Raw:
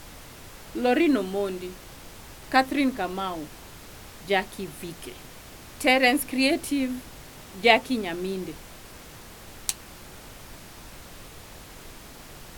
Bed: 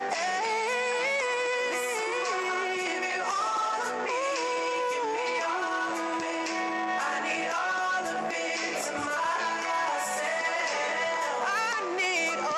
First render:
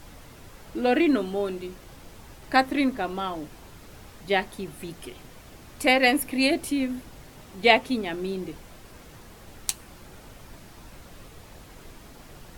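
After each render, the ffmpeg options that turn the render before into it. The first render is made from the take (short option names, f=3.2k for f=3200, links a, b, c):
-af "afftdn=nr=6:nf=-46"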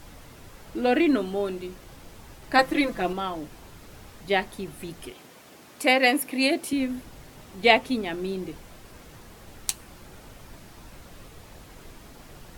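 -filter_complex "[0:a]asettb=1/sr,asplit=3[a][b][c];[a]atrim=end=2.584[d];[b]atrim=start=2.58:end=3.13,asetpts=PTS-STARTPTS,afade=t=in:d=0.004:c=qsin,afade=t=out:st=0.546:d=0.004:c=qsin,aecho=1:1:5.9:0.98,atrim=end_sample=24255[e];[c]atrim=start=3.126[f];[d][e]acrossfade=d=0.004:c1=hsin:c2=qsin[g];[g][f]acrossfade=d=0.004:c1=qsin:c2=hsin,asettb=1/sr,asplit=3[h][i][j];[h]atrim=end=5.114[k];[i]atrim=start=5.11:end=6.73,asetpts=PTS-STARTPTS,afade=t=in:d=0.004:c=qsin,afade=t=out:st=1.616:d=0.004:c=qsin,highpass=210[l];[j]atrim=start=6.726[m];[k][l]acrossfade=d=0.004:c1=hsin:c2=qsin[n];[n][m]acrossfade=d=0.004:c1=qsin:c2=hsin"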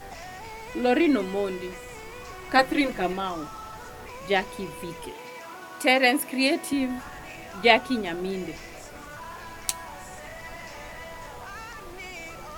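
-filter_complex "[1:a]volume=-12.5dB[a];[0:a][a]amix=inputs=2:normalize=0"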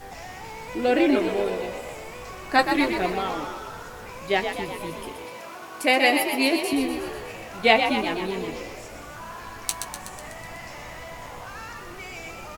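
-filter_complex "[0:a]asplit=2[a][b];[b]adelay=18,volume=-11dB[c];[a][c]amix=inputs=2:normalize=0,asplit=9[d][e][f][g][h][i][j][k][l];[e]adelay=124,afreqshift=53,volume=-7dB[m];[f]adelay=248,afreqshift=106,volume=-11.2dB[n];[g]adelay=372,afreqshift=159,volume=-15.3dB[o];[h]adelay=496,afreqshift=212,volume=-19.5dB[p];[i]adelay=620,afreqshift=265,volume=-23.6dB[q];[j]adelay=744,afreqshift=318,volume=-27.8dB[r];[k]adelay=868,afreqshift=371,volume=-31.9dB[s];[l]adelay=992,afreqshift=424,volume=-36.1dB[t];[d][m][n][o][p][q][r][s][t]amix=inputs=9:normalize=0"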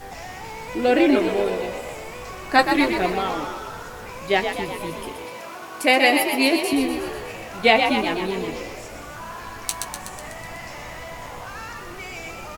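-af "volume=3dB,alimiter=limit=-3dB:level=0:latency=1"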